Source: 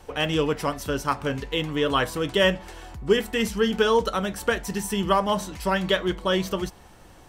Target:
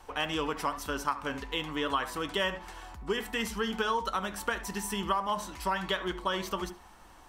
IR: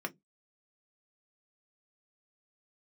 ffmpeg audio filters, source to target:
-filter_complex "[0:a]equalizer=f=125:t=o:w=1:g=-11,equalizer=f=500:t=o:w=1:g=-6,equalizer=f=1k:t=o:w=1:g=7,asplit=2[a][b];[1:a]atrim=start_sample=2205,adelay=69[c];[b][c]afir=irnorm=-1:irlink=0,volume=-17.5dB[d];[a][d]amix=inputs=2:normalize=0,acompressor=threshold=-22dB:ratio=4,volume=-4.5dB"

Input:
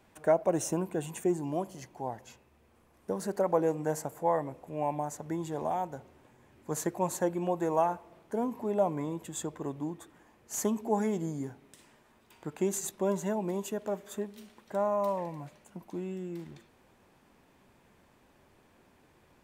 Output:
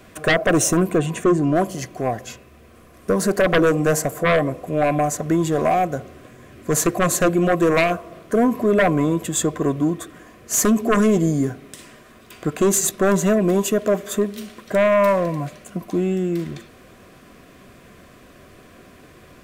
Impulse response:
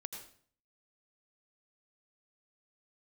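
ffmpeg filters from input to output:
-filter_complex "[0:a]aeval=exprs='0.237*sin(PI/2*3.98*val(0)/0.237)':c=same,asuperstop=centerf=870:order=12:qfactor=4.6,asplit=3[a][b][c];[a]afade=t=out:st=0.97:d=0.02[d];[b]aemphasis=mode=reproduction:type=50fm,afade=t=in:st=0.97:d=0.02,afade=t=out:st=1.55:d=0.02[e];[c]afade=t=in:st=1.55:d=0.02[f];[d][e][f]amix=inputs=3:normalize=0,volume=1dB"

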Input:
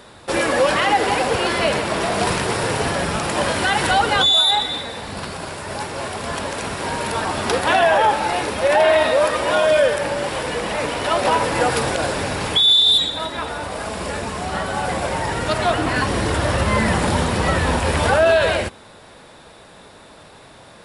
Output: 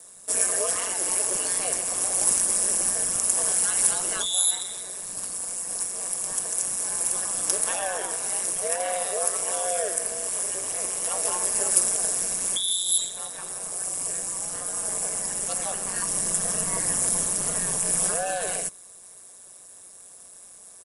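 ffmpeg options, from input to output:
-filter_complex "[0:a]aecho=1:1:1.8:0.65,aeval=exprs='val(0)*sin(2*PI*92*n/s)':c=same,lowshelf=f=120:g=-8.5,acrossover=split=150|2300[a][b][c];[c]aexciter=amount=15.4:drive=3:freq=6.1k[d];[a][b][d]amix=inputs=3:normalize=0,bass=f=250:g=3,treble=f=4k:g=6,volume=-15dB"

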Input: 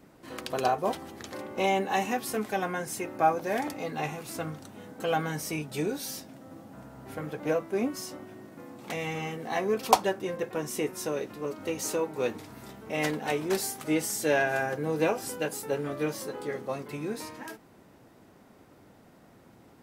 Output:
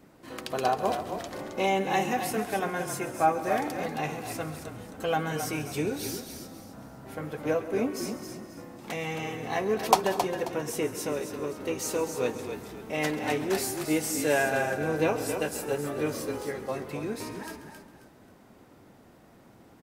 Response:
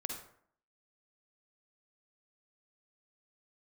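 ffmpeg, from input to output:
-filter_complex "[0:a]asplit=5[a][b][c][d][e];[b]adelay=268,afreqshift=-38,volume=-8dB[f];[c]adelay=536,afreqshift=-76,volume=-17.9dB[g];[d]adelay=804,afreqshift=-114,volume=-27.8dB[h];[e]adelay=1072,afreqshift=-152,volume=-37.7dB[i];[a][f][g][h][i]amix=inputs=5:normalize=0,asplit=2[j][k];[1:a]atrim=start_sample=2205,adelay=135[l];[k][l]afir=irnorm=-1:irlink=0,volume=-13dB[m];[j][m]amix=inputs=2:normalize=0"

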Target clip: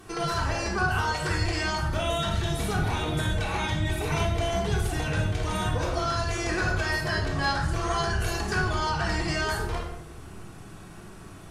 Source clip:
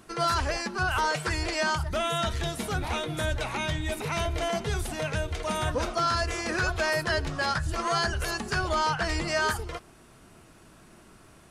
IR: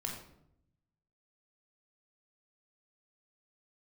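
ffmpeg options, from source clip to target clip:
-filter_complex "[0:a]acompressor=threshold=-34dB:ratio=2.5[a];[1:a]atrim=start_sample=2205,asetrate=36162,aresample=44100[b];[a][b]afir=irnorm=-1:irlink=0,volume=4.5dB"

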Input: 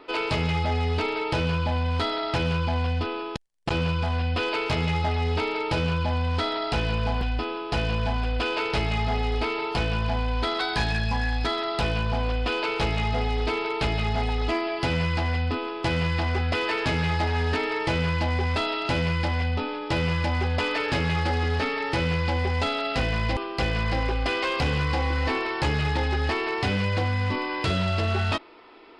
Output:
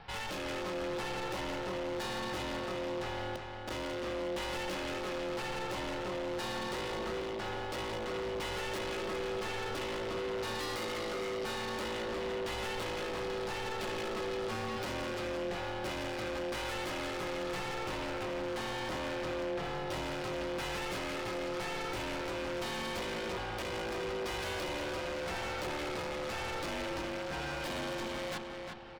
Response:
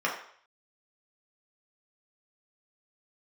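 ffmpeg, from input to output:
-filter_complex "[0:a]asettb=1/sr,asplit=3[a][b][c];[a]atrim=end=17.744[d];[b]atrim=start=17.74:end=19.64,asetpts=PTS-STARTPTS,afade=t=in:d=0.004:c=qsin,afade=t=out:st=1.896:d=0.004:c=qsin,highshelf=f=4.3k:g=-8.5[e];[c]atrim=start=19.636[f];[d][e]acrossfade=d=0.004:c1=hsin:c2=qsin[g];[g][f]acrossfade=d=0.004:c1=qsin:c2=hsin,asoftclip=type=hard:threshold=-33dB,aeval=exprs='val(0)*sin(2*PI*440*n/s)':c=same,asplit=2[h][i];[i]adelay=356,lowpass=f=4k:p=1,volume=-4.5dB,asplit=2[j][k];[k]adelay=356,lowpass=f=4k:p=1,volume=0.41,asplit=2[l][m];[m]adelay=356,lowpass=f=4k:p=1,volume=0.41,asplit=2[n][o];[o]adelay=356,lowpass=f=4k:p=1,volume=0.41,asplit=2[p][q];[q]adelay=356,lowpass=f=4k:p=1,volume=0.41[r];[h][j][l][n][p][r]amix=inputs=6:normalize=0,volume=-1.5dB"

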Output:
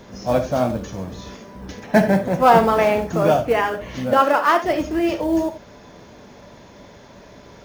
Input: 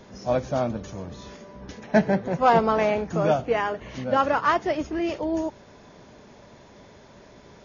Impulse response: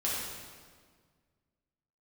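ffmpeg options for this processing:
-filter_complex "[0:a]acrusher=bits=7:mode=log:mix=0:aa=0.000001,asettb=1/sr,asplit=3[a][b][c];[a]atrim=end=4.134[d];[b]atrim=start=4.13:end=4.64,asetpts=PTS-STARTPTS,afade=t=in:d=0.004:c=qsin,afade=t=out:st=0.506:d=0.004:c=qsin,highpass=f=240:w=0.5412,highpass=f=240:w=1.3066[e];[c]atrim=start=4.636[f];[d][e]acrossfade=d=0.004:c1=hsin:c2=qsin[g];[g][f]acrossfade=d=0.004:c1=qsin:c2=hsin,asplit=2[h][i];[1:a]atrim=start_sample=2205,atrim=end_sample=3969[j];[i][j]afir=irnorm=-1:irlink=0,volume=-7.5dB[k];[h][k]amix=inputs=2:normalize=0,volume=2dB"

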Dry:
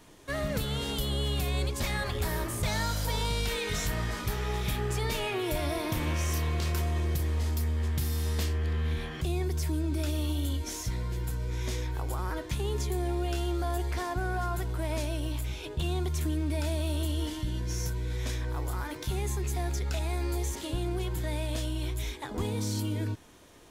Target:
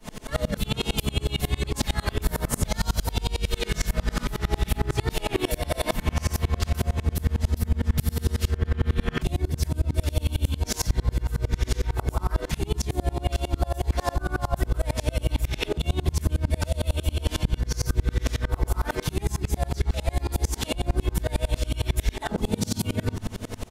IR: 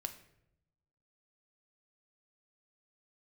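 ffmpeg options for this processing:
-filter_complex "[0:a]aecho=1:1:4.6:0.67,acrossover=split=210|3000[a][b][c];[b]acompressor=threshold=-32dB:ratio=10[d];[a][d][c]amix=inputs=3:normalize=0,lowshelf=f=170:g=5.5,asplit=2[e][f];[f]adelay=483,lowpass=f=1.2k:p=1,volume=-19dB,asplit=2[g][h];[h]adelay=483,lowpass=f=1.2k:p=1,volume=0.44,asplit=2[i][j];[j]adelay=483,lowpass=f=1.2k:p=1,volume=0.44[k];[e][g][i][k]amix=inputs=4:normalize=0,acompressor=threshold=-34dB:ratio=6,asplit=2[l][m];[1:a]atrim=start_sample=2205[n];[m][n]afir=irnorm=-1:irlink=0,volume=3.5dB[o];[l][o]amix=inputs=2:normalize=0,asplit=2[p][q];[q]asetrate=35002,aresample=44100,atempo=1.25992,volume=-5dB[r];[p][r]amix=inputs=2:normalize=0,alimiter=level_in=22.5dB:limit=-1dB:release=50:level=0:latency=1,aeval=exprs='val(0)*pow(10,-31*if(lt(mod(-11*n/s,1),2*abs(-11)/1000),1-mod(-11*n/s,1)/(2*abs(-11)/1000),(mod(-11*n/s,1)-2*abs(-11)/1000)/(1-2*abs(-11)/1000))/20)':c=same,volume=-8.5dB"

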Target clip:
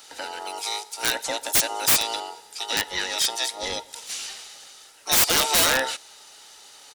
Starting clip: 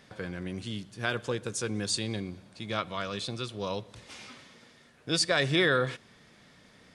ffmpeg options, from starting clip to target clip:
-filter_complex "[0:a]afftfilt=real='real(if(between(b,1,1008),(2*floor((b-1)/48)+1)*48-b,b),0)':imag='imag(if(between(b,1,1008),(2*floor((b-1)/48)+1)*48-b,b),0)*if(between(b,1,1008),-1,1)':win_size=2048:overlap=0.75,asplit=3[a][b][c];[b]asetrate=22050,aresample=44100,atempo=2,volume=-8dB[d];[c]asetrate=66075,aresample=44100,atempo=0.66742,volume=-13dB[e];[a][d][e]amix=inputs=3:normalize=0,acrossover=split=210|1500[f][g][h];[h]acontrast=73[i];[f][g][i]amix=inputs=3:normalize=0,bass=f=250:g=-6,treble=f=4k:g=14,aeval=exprs='(mod(3.76*val(0)+1,2)-1)/3.76':c=same"

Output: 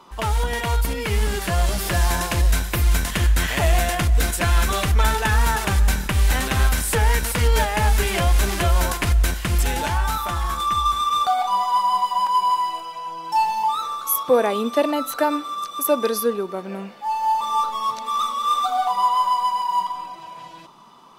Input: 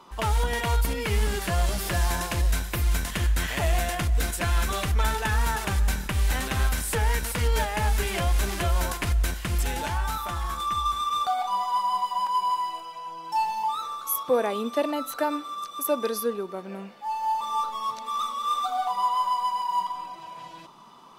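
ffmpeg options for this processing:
-af "dynaudnorm=f=380:g=9:m=3.5dB,volume=2.5dB"

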